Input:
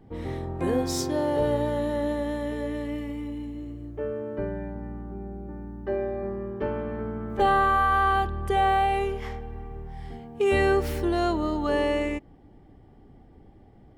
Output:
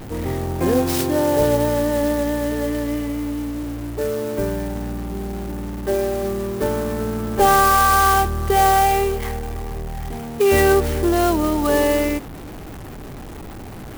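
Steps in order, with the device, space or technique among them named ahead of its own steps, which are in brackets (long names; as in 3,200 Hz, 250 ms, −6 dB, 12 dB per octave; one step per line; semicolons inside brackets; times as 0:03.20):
early CD player with a faulty converter (converter with a step at zero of −37 dBFS; converter with an unsteady clock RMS 0.044 ms)
level +6.5 dB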